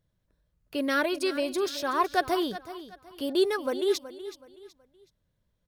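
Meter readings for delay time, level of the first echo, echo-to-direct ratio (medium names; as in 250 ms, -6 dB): 374 ms, -14.0 dB, -13.5 dB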